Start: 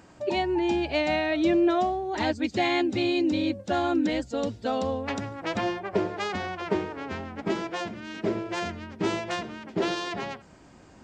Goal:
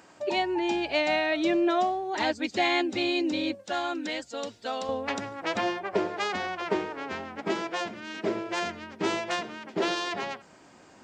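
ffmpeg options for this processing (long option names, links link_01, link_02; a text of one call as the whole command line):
ffmpeg -i in.wav -af "asetnsamples=nb_out_samples=441:pad=0,asendcmd='3.55 highpass f 1200;4.89 highpass f 400',highpass=frequency=510:poles=1,volume=2dB" out.wav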